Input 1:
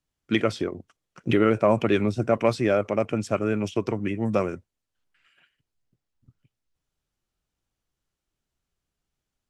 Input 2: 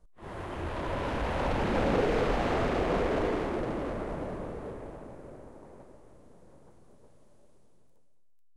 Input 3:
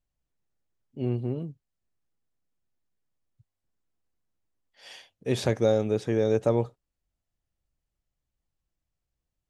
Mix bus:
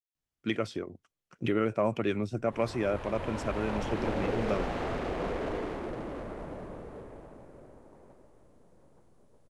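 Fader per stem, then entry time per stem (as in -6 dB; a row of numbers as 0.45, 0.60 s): -8.0 dB, -5.0 dB, off; 0.15 s, 2.30 s, off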